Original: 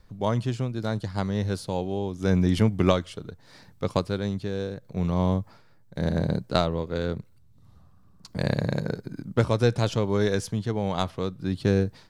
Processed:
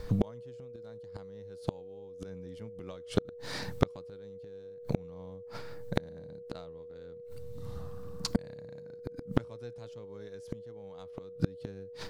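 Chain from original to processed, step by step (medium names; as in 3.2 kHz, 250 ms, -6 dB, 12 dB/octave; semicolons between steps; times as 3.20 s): inverted gate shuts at -24 dBFS, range -38 dB; whistle 480 Hz -57 dBFS; trim +12.5 dB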